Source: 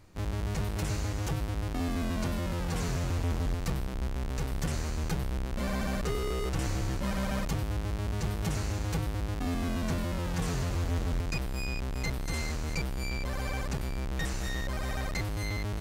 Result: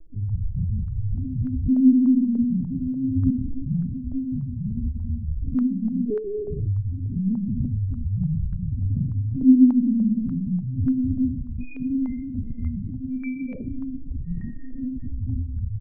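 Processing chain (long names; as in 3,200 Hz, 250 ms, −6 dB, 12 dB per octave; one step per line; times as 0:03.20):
high-pass filter 68 Hz 12 dB per octave
parametric band 250 Hz +11 dB 0.27 octaves
hum removal 242.9 Hz, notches 27
granular cloud 100 ms, pitch spread up and down by 0 semitones
mains hum 60 Hz, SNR 16 dB
spectral peaks only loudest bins 2
ambience of single reflections 15 ms −13 dB, 39 ms −8 dB
convolution reverb RT60 0.45 s, pre-delay 3 ms, DRR −10 dB
linear-prediction vocoder at 8 kHz pitch kept
low-pass on a step sequencer 3.4 Hz 440–1,500 Hz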